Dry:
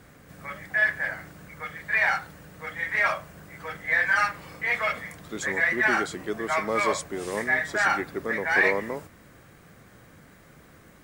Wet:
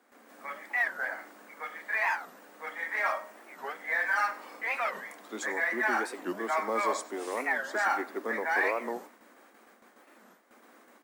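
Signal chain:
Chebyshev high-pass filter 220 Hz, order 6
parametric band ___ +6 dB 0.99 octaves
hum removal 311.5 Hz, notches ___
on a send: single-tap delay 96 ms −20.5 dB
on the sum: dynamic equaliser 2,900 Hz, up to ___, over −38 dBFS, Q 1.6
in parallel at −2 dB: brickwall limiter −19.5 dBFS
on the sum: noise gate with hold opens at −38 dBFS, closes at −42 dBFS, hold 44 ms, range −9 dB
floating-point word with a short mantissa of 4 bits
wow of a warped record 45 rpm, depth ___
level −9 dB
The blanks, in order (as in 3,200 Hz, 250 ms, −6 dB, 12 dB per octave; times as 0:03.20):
870 Hz, 24, −4 dB, 250 cents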